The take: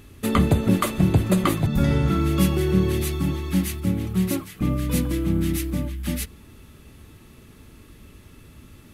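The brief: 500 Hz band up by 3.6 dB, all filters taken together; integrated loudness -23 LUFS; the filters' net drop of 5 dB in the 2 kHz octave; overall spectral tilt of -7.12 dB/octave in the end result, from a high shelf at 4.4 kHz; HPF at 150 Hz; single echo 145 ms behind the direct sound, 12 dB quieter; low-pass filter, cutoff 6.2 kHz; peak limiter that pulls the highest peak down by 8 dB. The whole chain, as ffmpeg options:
-af "highpass=150,lowpass=6200,equalizer=f=500:t=o:g=5.5,equalizer=f=2000:t=o:g=-7.5,highshelf=f=4400:g=4,alimiter=limit=0.188:level=0:latency=1,aecho=1:1:145:0.251,volume=1.26"

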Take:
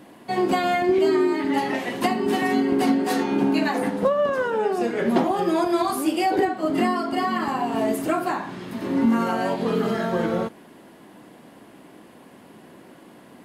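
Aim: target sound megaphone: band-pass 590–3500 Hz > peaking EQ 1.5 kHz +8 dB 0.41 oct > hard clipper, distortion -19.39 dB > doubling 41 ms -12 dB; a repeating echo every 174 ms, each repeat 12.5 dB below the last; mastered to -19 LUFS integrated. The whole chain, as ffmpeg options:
-filter_complex "[0:a]highpass=590,lowpass=3500,equalizer=f=1500:t=o:w=0.41:g=8,aecho=1:1:174|348|522:0.237|0.0569|0.0137,asoftclip=type=hard:threshold=0.119,asplit=2[s0][s1];[s1]adelay=41,volume=0.251[s2];[s0][s2]amix=inputs=2:normalize=0,volume=2.24"

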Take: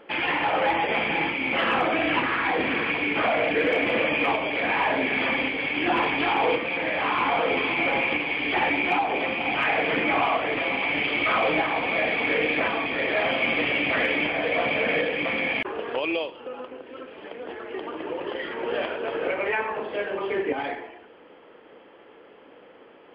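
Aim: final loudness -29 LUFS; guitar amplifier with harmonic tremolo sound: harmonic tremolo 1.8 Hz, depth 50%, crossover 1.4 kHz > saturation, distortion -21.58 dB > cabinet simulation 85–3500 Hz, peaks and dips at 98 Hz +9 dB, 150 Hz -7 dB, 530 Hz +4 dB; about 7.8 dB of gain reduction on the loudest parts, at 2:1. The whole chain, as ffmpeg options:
-filter_complex "[0:a]acompressor=threshold=0.02:ratio=2,acrossover=split=1400[s0][s1];[s0]aeval=exprs='val(0)*(1-0.5/2+0.5/2*cos(2*PI*1.8*n/s))':c=same[s2];[s1]aeval=exprs='val(0)*(1-0.5/2-0.5/2*cos(2*PI*1.8*n/s))':c=same[s3];[s2][s3]amix=inputs=2:normalize=0,asoftclip=threshold=0.0531,highpass=85,equalizer=f=98:t=q:w=4:g=9,equalizer=f=150:t=q:w=4:g=-7,equalizer=f=530:t=q:w=4:g=4,lowpass=f=3500:w=0.5412,lowpass=f=3500:w=1.3066,volume=1.78"

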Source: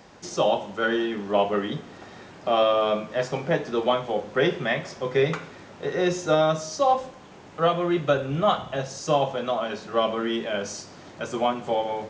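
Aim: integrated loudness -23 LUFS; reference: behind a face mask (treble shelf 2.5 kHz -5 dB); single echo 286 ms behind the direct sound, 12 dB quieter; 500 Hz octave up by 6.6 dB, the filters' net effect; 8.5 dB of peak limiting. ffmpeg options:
-af "equalizer=f=500:t=o:g=8.5,alimiter=limit=0.266:level=0:latency=1,highshelf=f=2500:g=-5,aecho=1:1:286:0.251"

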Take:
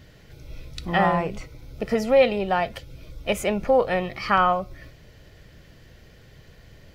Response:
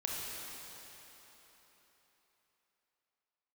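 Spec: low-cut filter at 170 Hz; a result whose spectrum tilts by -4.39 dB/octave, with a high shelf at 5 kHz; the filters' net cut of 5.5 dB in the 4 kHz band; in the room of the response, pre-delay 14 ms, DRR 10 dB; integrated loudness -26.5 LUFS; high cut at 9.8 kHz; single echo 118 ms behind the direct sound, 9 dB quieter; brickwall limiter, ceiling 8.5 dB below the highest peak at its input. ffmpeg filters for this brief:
-filter_complex "[0:a]highpass=170,lowpass=9800,equalizer=f=4000:t=o:g=-7,highshelf=f=5000:g=-3,alimiter=limit=0.178:level=0:latency=1,aecho=1:1:118:0.355,asplit=2[s0][s1];[1:a]atrim=start_sample=2205,adelay=14[s2];[s1][s2]afir=irnorm=-1:irlink=0,volume=0.211[s3];[s0][s3]amix=inputs=2:normalize=0,volume=1.06"

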